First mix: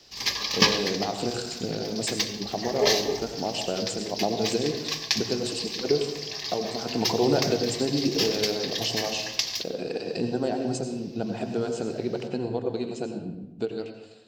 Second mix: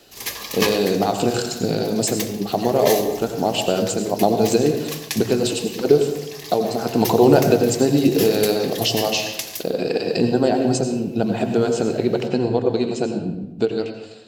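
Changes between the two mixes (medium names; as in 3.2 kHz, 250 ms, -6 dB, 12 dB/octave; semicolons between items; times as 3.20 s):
speech +9.5 dB; background: add resonant high shelf 7 kHz +12.5 dB, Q 3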